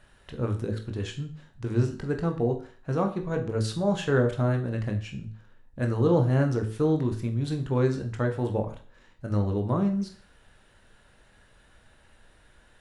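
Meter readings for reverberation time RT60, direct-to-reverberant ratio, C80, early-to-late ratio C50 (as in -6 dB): 0.40 s, 4.0 dB, 15.0 dB, 11.0 dB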